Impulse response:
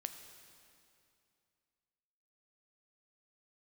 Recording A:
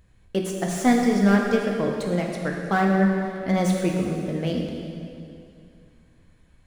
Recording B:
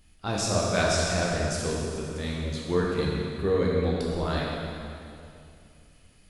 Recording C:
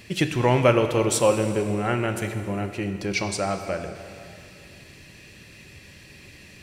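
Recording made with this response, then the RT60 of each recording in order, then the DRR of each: C; 2.6, 2.6, 2.6 seconds; 0.0, −4.5, 7.0 decibels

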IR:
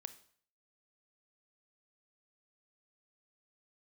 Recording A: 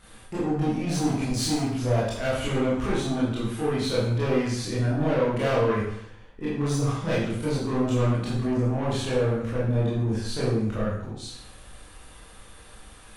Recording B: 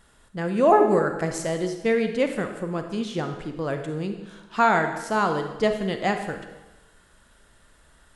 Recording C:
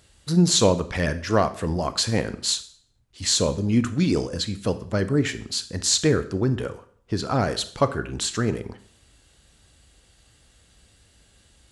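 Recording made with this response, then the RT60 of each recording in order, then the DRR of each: C; 0.70, 1.1, 0.55 seconds; −9.0, 6.0, 11.5 decibels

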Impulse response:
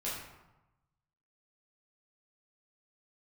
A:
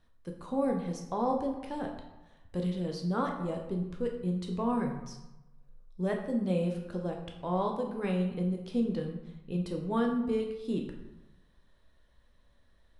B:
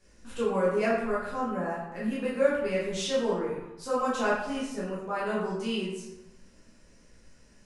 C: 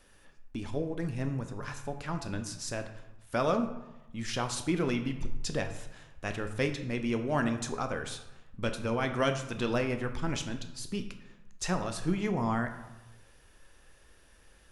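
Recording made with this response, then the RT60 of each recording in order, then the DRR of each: B; 1.0, 1.0, 1.0 seconds; 1.5, −8.5, 6.0 decibels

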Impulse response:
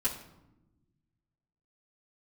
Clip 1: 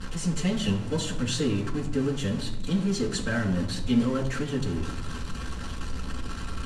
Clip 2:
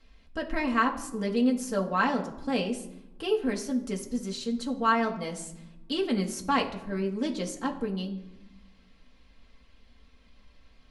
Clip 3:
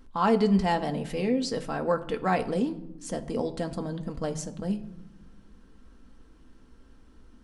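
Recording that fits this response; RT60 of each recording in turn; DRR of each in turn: 1; 0.95 s, 1.0 s, non-exponential decay; −9.0, −0.5, 5.0 decibels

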